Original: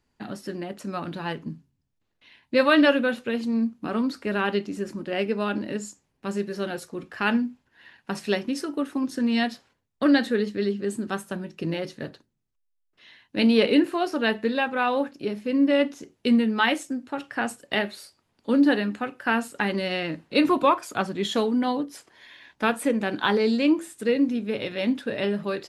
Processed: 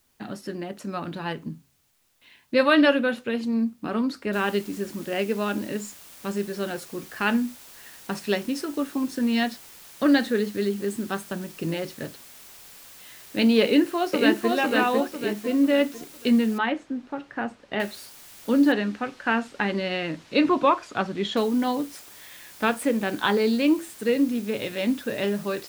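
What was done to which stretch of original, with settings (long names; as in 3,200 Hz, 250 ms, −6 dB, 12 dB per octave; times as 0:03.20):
0:04.33: noise floor change −68 dB −47 dB
0:13.63–0:14.50: delay throw 500 ms, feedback 40%, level −2 dB
0:16.58–0:17.80: head-to-tape spacing loss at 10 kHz 29 dB
0:18.72–0:21.37: low-pass filter 4,600 Hz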